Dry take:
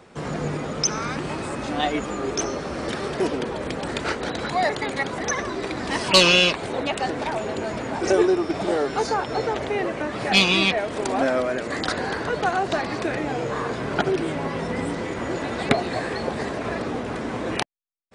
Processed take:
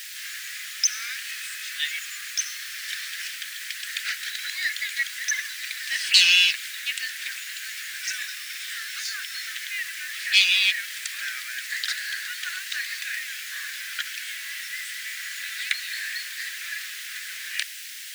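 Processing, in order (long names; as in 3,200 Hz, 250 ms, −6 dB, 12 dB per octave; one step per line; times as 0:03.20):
background noise pink −37 dBFS
elliptic high-pass filter 1,700 Hz, stop band 50 dB
in parallel at −5.5 dB: soft clipping −27 dBFS, distortion −3 dB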